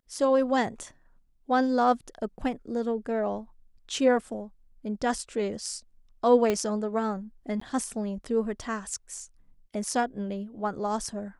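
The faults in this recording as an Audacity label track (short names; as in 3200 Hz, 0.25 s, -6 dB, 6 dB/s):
6.500000	6.500000	pop -13 dBFS
7.600000	7.610000	gap 14 ms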